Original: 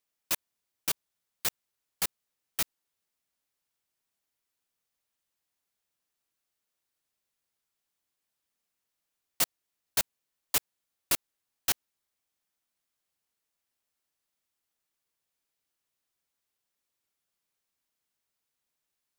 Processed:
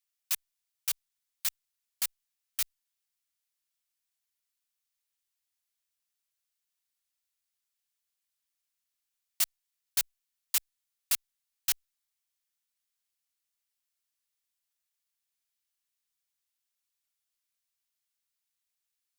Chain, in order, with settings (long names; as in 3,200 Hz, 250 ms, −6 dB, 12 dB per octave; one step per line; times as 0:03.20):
guitar amp tone stack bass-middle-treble 10-0-10